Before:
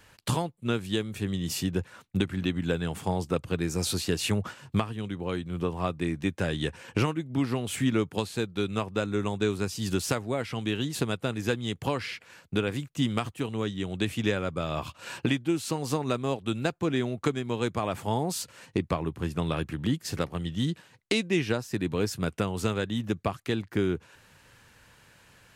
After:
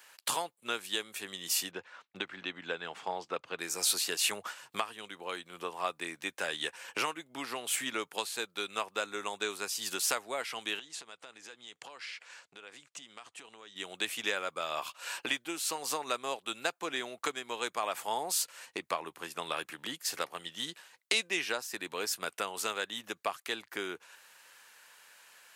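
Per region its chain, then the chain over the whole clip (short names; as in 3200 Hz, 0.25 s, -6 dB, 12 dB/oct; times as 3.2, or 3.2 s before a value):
1.71–3.59 HPF 45 Hz + air absorption 160 m
10.79–13.76 LPF 8500 Hz 24 dB/oct + compressor 8:1, threshold -39 dBFS
whole clip: HPF 740 Hz 12 dB/oct; high shelf 7800 Hz +7.5 dB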